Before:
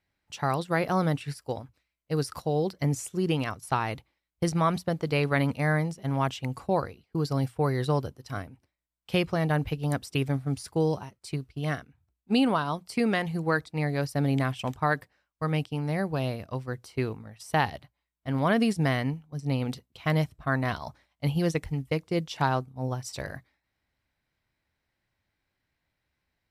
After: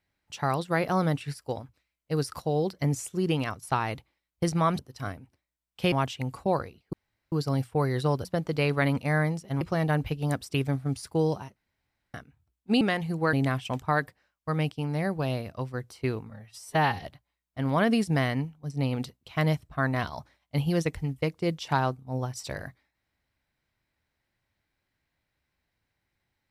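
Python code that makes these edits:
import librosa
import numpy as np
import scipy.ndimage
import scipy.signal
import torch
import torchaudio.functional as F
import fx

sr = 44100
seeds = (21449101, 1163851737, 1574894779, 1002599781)

y = fx.edit(x, sr, fx.swap(start_s=4.79, length_s=1.36, other_s=8.09, other_length_s=1.13),
    fx.insert_room_tone(at_s=7.16, length_s=0.39),
    fx.room_tone_fill(start_s=11.17, length_s=0.58),
    fx.cut(start_s=12.42, length_s=0.64),
    fx.cut(start_s=13.58, length_s=0.69),
    fx.stretch_span(start_s=17.24, length_s=0.5, factor=1.5), tone=tone)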